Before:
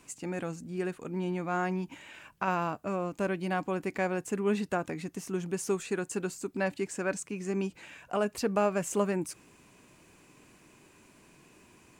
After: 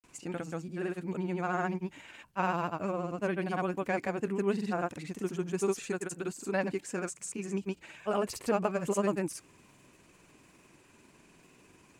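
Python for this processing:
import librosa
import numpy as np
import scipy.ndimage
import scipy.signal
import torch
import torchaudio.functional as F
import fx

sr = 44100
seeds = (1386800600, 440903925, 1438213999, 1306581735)

y = fx.granulator(x, sr, seeds[0], grain_ms=100.0, per_s=20.0, spray_ms=100.0, spread_st=0)
y = fx.vibrato(y, sr, rate_hz=14.0, depth_cents=51.0)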